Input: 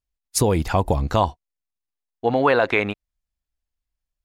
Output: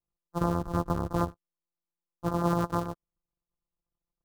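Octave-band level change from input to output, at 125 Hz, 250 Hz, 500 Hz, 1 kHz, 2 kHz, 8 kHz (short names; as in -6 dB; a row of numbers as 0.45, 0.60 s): -6.5 dB, -5.0 dB, -12.5 dB, -9.0 dB, -20.0 dB, n/a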